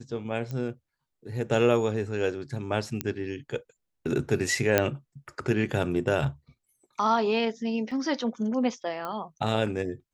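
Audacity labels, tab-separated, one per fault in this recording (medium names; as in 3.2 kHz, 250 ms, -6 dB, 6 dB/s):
0.510000	0.510000	pop -23 dBFS
3.010000	3.010000	pop -12 dBFS
4.780000	4.780000	pop -6 dBFS
7.910000	7.910000	dropout 4.4 ms
9.050000	9.050000	pop -21 dBFS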